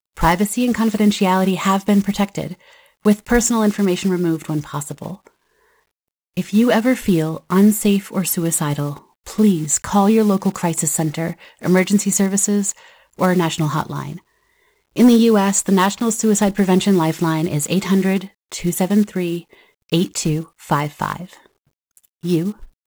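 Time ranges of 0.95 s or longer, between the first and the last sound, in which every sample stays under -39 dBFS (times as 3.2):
5.27–6.37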